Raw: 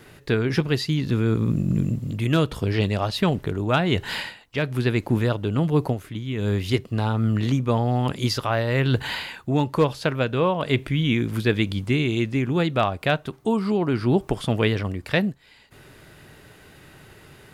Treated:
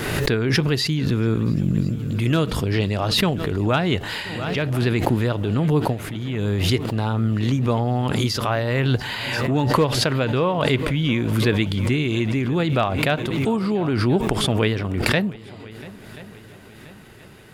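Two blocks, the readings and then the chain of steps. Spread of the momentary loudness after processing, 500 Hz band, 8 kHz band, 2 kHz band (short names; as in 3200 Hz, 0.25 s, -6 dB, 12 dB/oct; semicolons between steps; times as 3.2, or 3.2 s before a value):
6 LU, +1.5 dB, +8.0 dB, +2.5 dB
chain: multi-head echo 0.344 s, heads second and third, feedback 52%, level -21 dB; backwards sustainer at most 29 dB/s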